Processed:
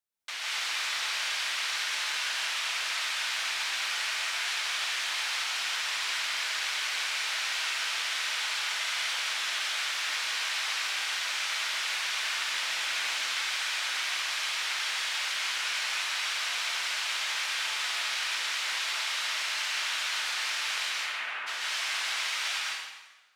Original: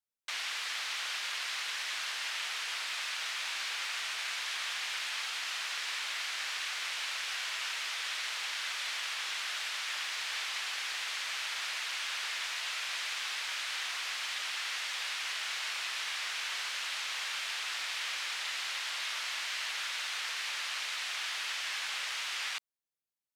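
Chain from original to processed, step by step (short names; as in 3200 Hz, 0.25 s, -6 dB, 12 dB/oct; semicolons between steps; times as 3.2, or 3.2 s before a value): 12.35–13.17 low shelf 300 Hz +8.5 dB; 20.88–21.46 LPF 3800 Hz -> 1600 Hz 24 dB/oct; plate-style reverb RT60 1.2 s, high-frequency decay 0.85×, pre-delay 0.115 s, DRR -4 dB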